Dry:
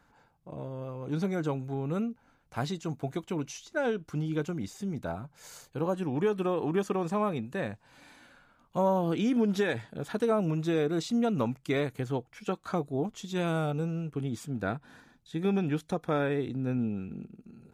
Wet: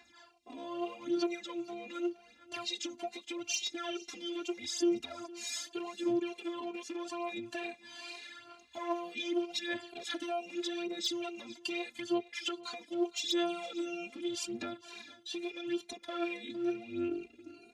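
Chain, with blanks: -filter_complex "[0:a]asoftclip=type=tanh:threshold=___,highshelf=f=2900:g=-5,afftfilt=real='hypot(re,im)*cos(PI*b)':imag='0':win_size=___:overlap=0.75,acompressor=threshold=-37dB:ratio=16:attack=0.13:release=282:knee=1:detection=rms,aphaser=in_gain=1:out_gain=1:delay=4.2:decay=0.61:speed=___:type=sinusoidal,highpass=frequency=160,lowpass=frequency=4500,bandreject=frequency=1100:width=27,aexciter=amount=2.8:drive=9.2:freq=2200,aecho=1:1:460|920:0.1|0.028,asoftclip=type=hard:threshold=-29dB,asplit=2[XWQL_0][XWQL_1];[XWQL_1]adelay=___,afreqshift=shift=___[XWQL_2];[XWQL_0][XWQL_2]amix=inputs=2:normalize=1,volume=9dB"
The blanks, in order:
-20.5dB, 512, 0.82, 2.1, 2.2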